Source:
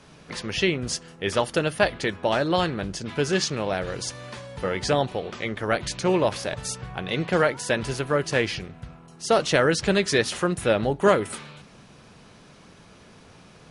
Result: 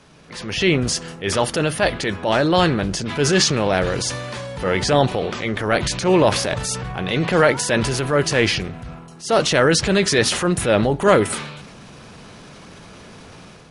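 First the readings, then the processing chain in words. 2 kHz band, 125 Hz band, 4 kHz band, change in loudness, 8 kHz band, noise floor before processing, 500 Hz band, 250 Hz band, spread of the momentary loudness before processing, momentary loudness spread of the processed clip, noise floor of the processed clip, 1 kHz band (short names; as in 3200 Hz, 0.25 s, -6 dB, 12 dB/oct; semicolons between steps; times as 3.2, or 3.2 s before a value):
+5.5 dB, +7.5 dB, +7.0 dB, +6.0 dB, +8.5 dB, -51 dBFS, +5.0 dB, +6.5 dB, 13 LU, 11 LU, -42 dBFS, +5.5 dB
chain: AGC gain up to 8 dB; transient shaper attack -6 dB, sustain +5 dB; gain +1 dB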